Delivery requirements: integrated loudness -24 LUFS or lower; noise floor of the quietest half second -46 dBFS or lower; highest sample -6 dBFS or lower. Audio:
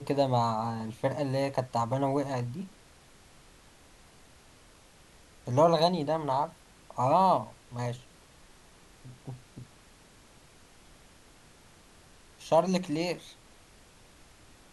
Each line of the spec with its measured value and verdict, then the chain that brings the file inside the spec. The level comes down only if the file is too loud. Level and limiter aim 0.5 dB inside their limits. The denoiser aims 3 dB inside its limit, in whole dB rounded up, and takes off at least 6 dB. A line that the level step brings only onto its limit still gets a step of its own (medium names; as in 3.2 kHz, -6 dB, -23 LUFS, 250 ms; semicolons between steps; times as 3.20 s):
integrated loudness -29.0 LUFS: pass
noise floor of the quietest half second -57 dBFS: pass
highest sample -11.5 dBFS: pass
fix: none needed